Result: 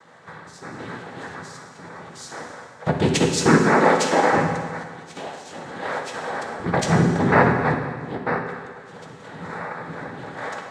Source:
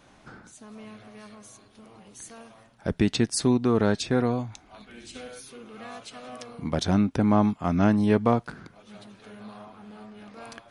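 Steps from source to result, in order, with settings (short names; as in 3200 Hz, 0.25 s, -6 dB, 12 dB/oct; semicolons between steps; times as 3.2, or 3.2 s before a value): 3.61–4.32 steep high-pass 370 Hz; 4.83–5.45 expander -37 dBFS; bell 940 Hz +13 dB 0.8 oct; 7.74–9.74 fade in; AGC gain up to 6 dB; noise vocoder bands 6; reverb RT60 1.7 s, pre-delay 3 ms, DRR 1.5 dB; gain -1 dB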